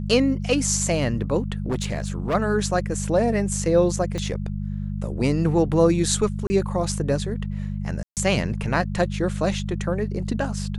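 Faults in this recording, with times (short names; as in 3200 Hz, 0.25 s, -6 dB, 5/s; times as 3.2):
hum 50 Hz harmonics 4 -28 dBFS
1.66–2.35 clipped -20 dBFS
4.18 pop -18 dBFS
6.47–6.5 gap 30 ms
8.03–8.17 gap 0.138 s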